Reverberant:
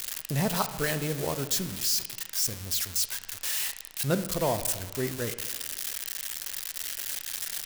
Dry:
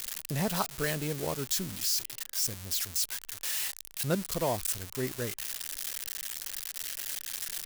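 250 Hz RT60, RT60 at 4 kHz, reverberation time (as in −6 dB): 1.4 s, 1.1 s, 1.4 s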